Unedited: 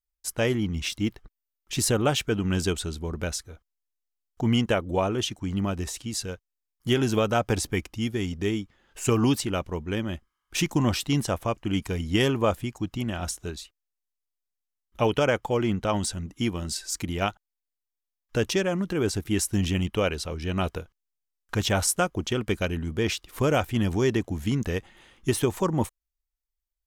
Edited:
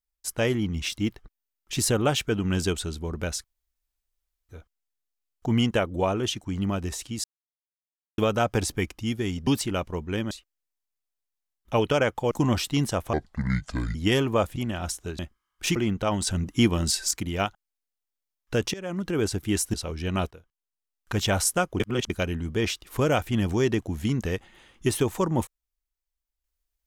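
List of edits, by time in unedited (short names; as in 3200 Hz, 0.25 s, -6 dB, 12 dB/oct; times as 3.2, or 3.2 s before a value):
3.44 insert room tone 1.05 s
6.19–7.13 mute
8.42–9.26 cut
10.1–10.67 swap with 13.58–15.58
11.49–12.03 speed 66%
12.64–12.95 cut
16.09–16.93 gain +6.5 dB
18.56–18.89 fade in, from -21.5 dB
19.56–20.16 cut
20.73–21.64 fade in, from -16.5 dB
22.22–22.52 reverse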